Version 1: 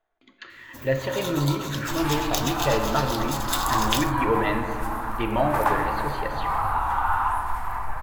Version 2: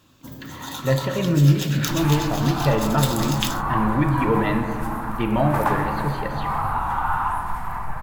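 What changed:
first sound: entry -0.50 s; master: add bell 170 Hz +14 dB 0.86 oct

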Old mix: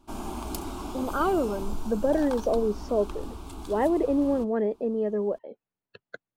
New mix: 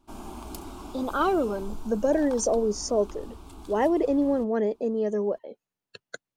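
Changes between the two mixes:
speech: remove air absorption 320 m; background -5.0 dB

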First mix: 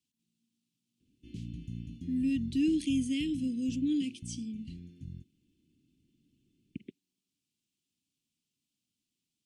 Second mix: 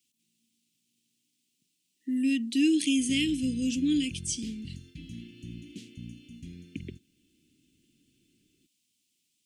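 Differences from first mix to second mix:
background: entry +1.75 s; master: add EQ curve 150 Hz 0 dB, 1200 Hz +12 dB, 4500 Hz +10 dB, 8000 Hz +13 dB

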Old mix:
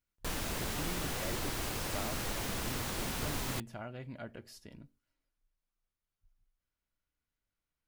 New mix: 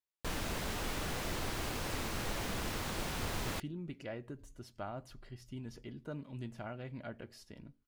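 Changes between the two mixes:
speech: entry +2.85 s; master: add high shelf 6700 Hz -7 dB

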